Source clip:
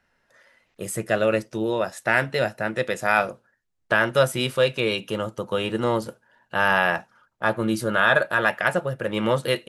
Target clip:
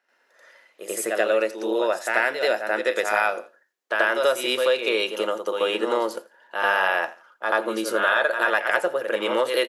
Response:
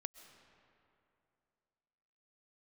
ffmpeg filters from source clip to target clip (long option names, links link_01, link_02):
-filter_complex "[0:a]aecho=1:1:84|168:0.0794|0.0199,asplit=2[link_01][link_02];[1:a]atrim=start_sample=2205,atrim=end_sample=3969,adelay=86[link_03];[link_02][link_03]afir=irnorm=-1:irlink=0,volume=12dB[link_04];[link_01][link_04]amix=inputs=2:normalize=0,acompressor=threshold=-13dB:ratio=4,highpass=frequency=330:width=0.5412,highpass=frequency=330:width=1.3066,equalizer=frequency=8800:width=6.1:gain=-4.5,volume=-4dB"